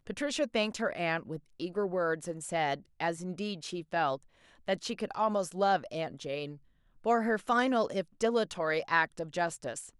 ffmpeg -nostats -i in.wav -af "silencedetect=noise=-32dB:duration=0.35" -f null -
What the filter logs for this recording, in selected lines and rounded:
silence_start: 4.15
silence_end: 4.68 | silence_duration: 0.53
silence_start: 6.45
silence_end: 7.06 | silence_duration: 0.61